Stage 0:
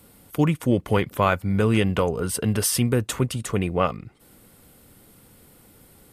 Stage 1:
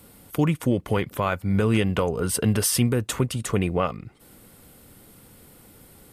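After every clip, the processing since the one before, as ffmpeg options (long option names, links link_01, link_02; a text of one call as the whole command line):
ffmpeg -i in.wav -af "alimiter=limit=-13.5dB:level=0:latency=1:release=320,volume=2dB" out.wav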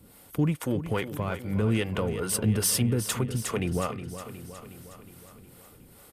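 ffmpeg -i in.wav -filter_complex "[0:a]asplit=2[link_01][link_02];[link_02]asoftclip=type=tanh:threshold=-22dB,volume=-5dB[link_03];[link_01][link_03]amix=inputs=2:normalize=0,acrossover=split=400[link_04][link_05];[link_04]aeval=exprs='val(0)*(1-0.7/2+0.7/2*cos(2*PI*2.4*n/s))':channel_layout=same[link_06];[link_05]aeval=exprs='val(0)*(1-0.7/2-0.7/2*cos(2*PI*2.4*n/s))':channel_layout=same[link_07];[link_06][link_07]amix=inputs=2:normalize=0,aecho=1:1:364|728|1092|1456|1820|2184|2548:0.266|0.16|0.0958|0.0575|0.0345|0.0207|0.0124,volume=-4dB" out.wav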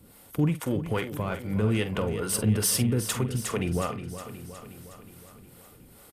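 ffmpeg -i in.wav -filter_complex "[0:a]asplit=2[link_01][link_02];[link_02]adelay=47,volume=-12dB[link_03];[link_01][link_03]amix=inputs=2:normalize=0" out.wav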